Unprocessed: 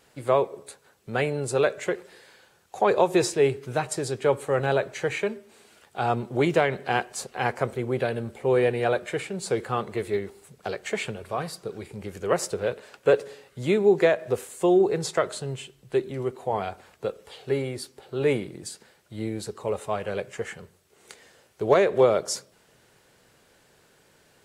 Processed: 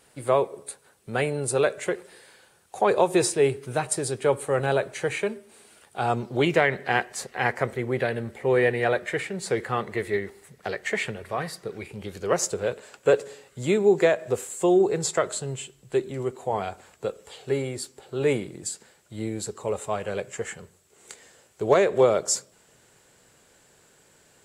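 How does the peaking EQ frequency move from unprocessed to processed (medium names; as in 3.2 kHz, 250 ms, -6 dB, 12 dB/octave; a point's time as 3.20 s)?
peaking EQ +11 dB 0.29 oct
6.07 s 9.2 kHz
6.59 s 1.9 kHz
11.72 s 1.9 kHz
12.51 s 7.5 kHz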